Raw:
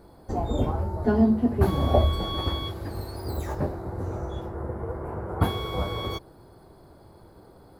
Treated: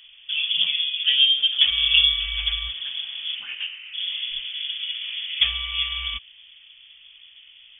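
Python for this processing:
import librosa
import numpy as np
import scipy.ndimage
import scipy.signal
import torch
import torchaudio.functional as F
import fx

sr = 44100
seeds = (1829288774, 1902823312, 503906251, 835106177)

y = fx.highpass(x, sr, hz=fx.line((3.34, 210.0), (3.93, 580.0)), slope=12, at=(3.34, 3.93), fade=0.02)
y = fx.freq_invert(y, sr, carrier_hz=3400)
y = y * 10.0 ** (1.5 / 20.0)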